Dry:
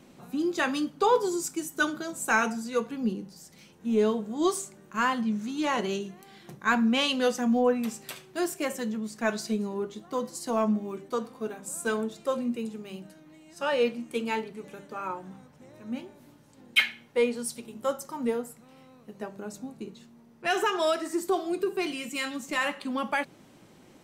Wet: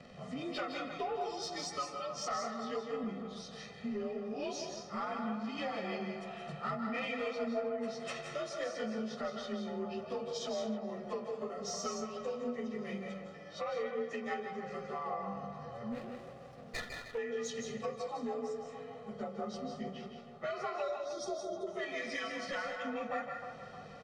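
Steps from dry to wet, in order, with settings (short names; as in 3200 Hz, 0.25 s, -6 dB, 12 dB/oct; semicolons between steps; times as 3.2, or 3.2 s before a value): inharmonic rescaling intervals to 90%; LPF 4400 Hz 12 dB/oct; comb 1.6 ms, depth 89%; compressor 5:1, threshold -40 dBFS, peak gain reduction 20.5 dB; soft clip -31 dBFS, distortion -23 dB; 20.82–21.67 brick-wall FIR band-stop 790–3200 Hz; narrowing echo 0.31 s, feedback 62%, band-pass 840 Hz, level -8 dB; on a send at -4 dB: reverb, pre-delay 0.151 s; 15.92–17.18 on the sum: running maximum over 9 samples; gain +3 dB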